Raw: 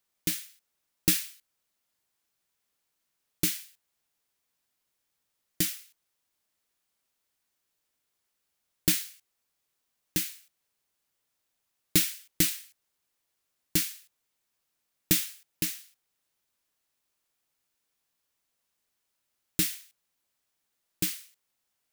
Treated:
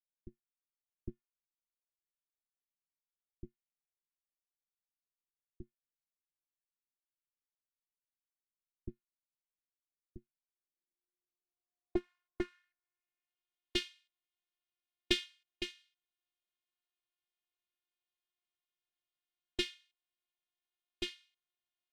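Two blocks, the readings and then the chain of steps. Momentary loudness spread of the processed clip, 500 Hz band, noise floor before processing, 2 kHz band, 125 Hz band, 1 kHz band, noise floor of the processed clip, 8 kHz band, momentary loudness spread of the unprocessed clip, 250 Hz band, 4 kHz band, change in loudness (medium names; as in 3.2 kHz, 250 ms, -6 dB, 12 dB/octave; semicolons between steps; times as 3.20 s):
23 LU, +0.5 dB, -81 dBFS, -7.5 dB, -16.5 dB, -5.0 dB, under -85 dBFS, -25.0 dB, 15 LU, -9.5 dB, -6.5 dB, -10.5 dB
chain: robot voice 357 Hz; low-pass sweep 170 Hz -> 3.3 kHz, 10.31–13.48 s; upward expansion 1.5:1, over -47 dBFS; trim -2 dB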